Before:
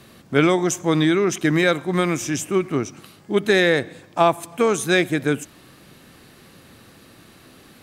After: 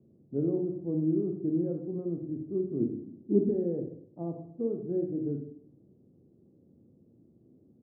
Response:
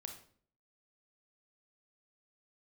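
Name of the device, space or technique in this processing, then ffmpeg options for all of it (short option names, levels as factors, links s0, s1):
next room: -filter_complex "[0:a]highpass=98,asettb=1/sr,asplit=3[s0][s1][s2];[s0]atrim=end=2.804[s3];[s1]atrim=start=2.8:end=3.49,asetpts=PTS-STARTPTS,afade=t=in:d=0.004:c=qsin,afade=t=out:st=0.686:d=0.004:c=qsin,equalizer=f=270:t=o:w=1.1:g=14[s4];[s2]atrim=start=3.486[s5];[s3][s4]acrossfade=d=0.004:c1=hsin:c2=qsin[s6];[s6][s5]acrossfade=d=0.004:c1=qsin:c2=hsin,lowpass=f=440:w=0.5412,lowpass=f=440:w=1.3066,aecho=1:1:102:0.15[s7];[1:a]atrim=start_sample=2205[s8];[s7][s8]afir=irnorm=-1:irlink=0,volume=0.501"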